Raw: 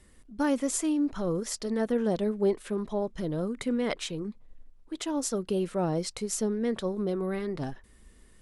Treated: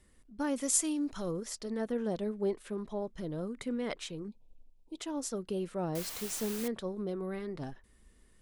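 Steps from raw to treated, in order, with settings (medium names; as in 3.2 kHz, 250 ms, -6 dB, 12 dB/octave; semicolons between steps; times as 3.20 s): 0.56–1.31 s: treble shelf 3.1 kHz +11.5 dB; 4.28–4.98 s: Chebyshev band-stop 950–2400 Hz, order 4; 5.95–6.68 s: word length cut 6-bit, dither triangular; trim -6.5 dB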